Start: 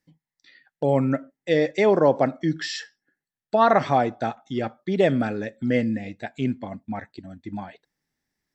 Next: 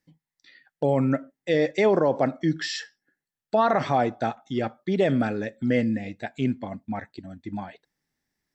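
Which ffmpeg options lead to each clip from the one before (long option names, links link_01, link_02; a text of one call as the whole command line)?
ffmpeg -i in.wav -af "alimiter=limit=-11.5dB:level=0:latency=1:release=28" out.wav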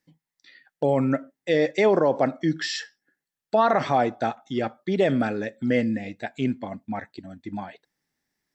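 ffmpeg -i in.wav -af "lowshelf=frequency=120:gain=-7.5,volume=1.5dB" out.wav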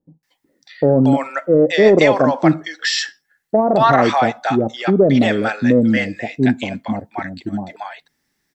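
ffmpeg -i in.wav -filter_complex "[0:a]acrossover=split=700[link_01][link_02];[link_02]adelay=230[link_03];[link_01][link_03]amix=inputs=2:normalize=0,acontrast=61,volume=4dB" out.wav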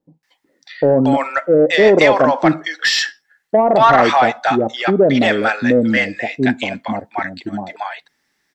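ffmpeg -i in.wav -filter_complex "[0:a]asplit=2[link_01][link_02];[link_02]highpass=frequency=720:poles=1,volume=11dB,asoftclip=type=tanh:threshold=-1dB[link_03];[link_01][link_03]amix=inputs=2:normalize=0,lowpass=frequency=4100:poles=1,volume=-6dB" out.wav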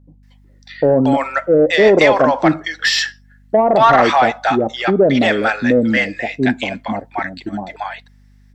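ffmpeg -i in.wav -af "aeval=exprs='val(0)+0.00447*(sin(2*PI*50*n/s)+sin(2*PI*2*50*n/s)/2+sin(2*PI*3*50*n/s)/3+sin(2*PI*4*50*n/s)/4+sin(2*PI*5*50*n/s)/5)':channel_layout=same" out.wav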